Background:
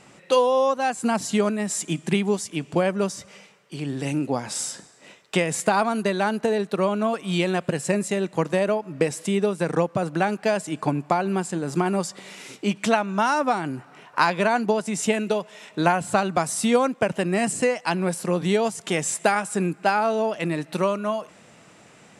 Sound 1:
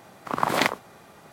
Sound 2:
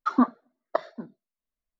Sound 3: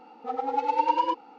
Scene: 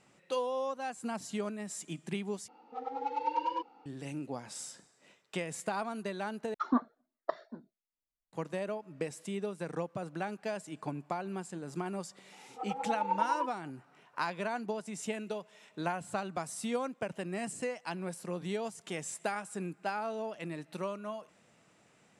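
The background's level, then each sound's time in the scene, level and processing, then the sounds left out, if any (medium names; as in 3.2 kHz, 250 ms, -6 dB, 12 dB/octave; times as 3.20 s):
background -14.5 dB
2.48 s: replace with 3 -9 dB
6.54 s: replace with 2 -8 dB
12.32 s: add 3 -7.5 dB + band-pass filter 960 Hz, Q 0.68
not used: 1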